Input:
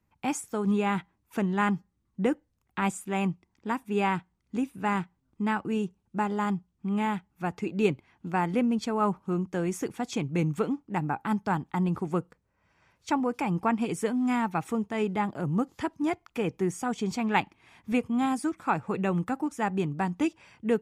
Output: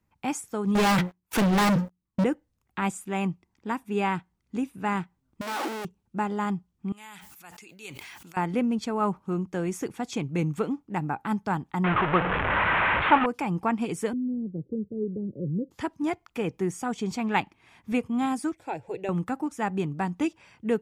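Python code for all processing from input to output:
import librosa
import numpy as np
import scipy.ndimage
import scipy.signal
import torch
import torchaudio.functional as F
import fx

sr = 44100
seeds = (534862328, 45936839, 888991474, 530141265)

y = fx.chain(x, sr, fx.hum_notches(base_hz=60, count=6),
    fx.leveller(passes=5),
    fx.overload_stage(gain_db=20.0), at=(0.75, 2.24))
y = fx.chain(y, sr, fx.clip_1bit(),
    fx.brickwall_highpass(low_hz=230.0),
    fx.high_shelf(hz=3600.0, db=-6.5), at=(5.41, 5.85))
y = fx.chain(y, sr, fx.pre_emphasis(coefficient=0.97),
    fx.sustainer(db_per_s=21.0), at=(6.92, 8.37))
y = fx.chain(y, sr, fx.delta_mod(bps=16000, step_db=-25.0),
    fx.peak_eq(hz=1300.0, db=11.5, octaves=2.3),
    fx.doppler_dist(depth_ms=0.12), at=(11.84, 13.26))
y = fx.chain(y, sr, fx.cheby_ripple(hz=550.0, ripple_db=3),
    fx.band_squash(depth_pct=40), at=(14.13, 15.71))
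y = fx.chain(y, sr, fx.high_shelf(hz=5700.0, db=-5.5),
    fx.fixed_phaser(hz=500.0, stages=4), at=(18.53, 19.09))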